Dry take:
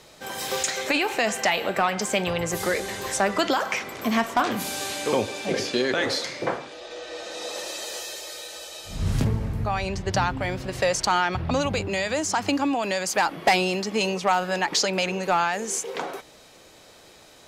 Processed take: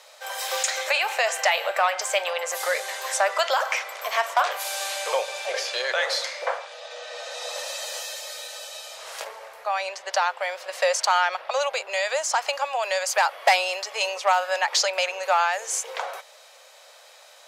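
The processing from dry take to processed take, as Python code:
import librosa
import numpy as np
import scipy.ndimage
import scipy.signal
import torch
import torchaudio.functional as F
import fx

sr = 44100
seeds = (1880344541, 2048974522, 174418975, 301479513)

y = scipy.signal.sosfilt(scipy.signal.ellip(4, 1.0, 50, 540.0, 'highpass', fs=sr, output='sos'), x)
y = F.gain(torch.from_numpy(y), 2.0).numpy()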